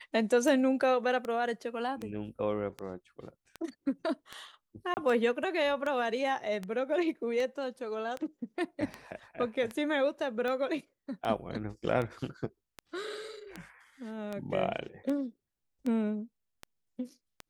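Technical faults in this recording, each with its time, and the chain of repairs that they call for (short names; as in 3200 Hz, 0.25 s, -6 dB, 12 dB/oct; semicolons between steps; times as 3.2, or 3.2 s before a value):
tick 78 rpm
4.94–4.97 gap 29 ms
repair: de-click; interpolate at 4.94, 29 ms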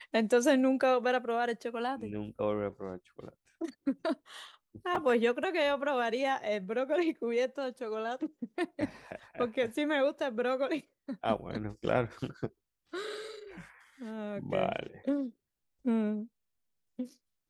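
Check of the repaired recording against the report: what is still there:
none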